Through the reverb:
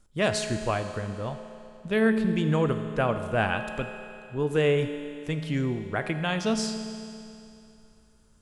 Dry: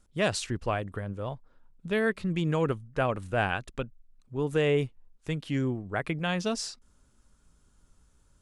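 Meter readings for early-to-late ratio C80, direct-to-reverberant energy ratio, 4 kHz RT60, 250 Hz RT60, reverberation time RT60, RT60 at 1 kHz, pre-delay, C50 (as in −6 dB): 8.5 dB, 6.5 dB, 2.6 s, 2.7 s, 2.7 s, 2.7 s, 5 ms, 7.5 dB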